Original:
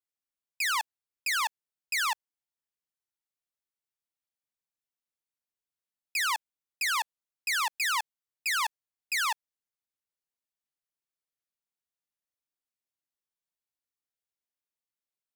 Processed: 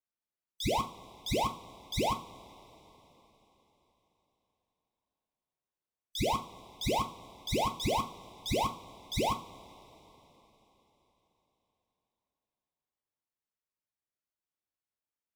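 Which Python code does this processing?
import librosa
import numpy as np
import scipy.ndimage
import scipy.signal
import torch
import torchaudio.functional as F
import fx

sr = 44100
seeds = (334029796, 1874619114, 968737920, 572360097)

y = fx.band_invert(x, sr, width_hz=2000)
y = fx.high_shelf(y, sr, hz=2100.0, db=-11.0)
y = fx.rev_double_slope(y, sr, seeds[0], early_s=0.31, late_s=4.1, knee_db=-22, drr_db=4.0)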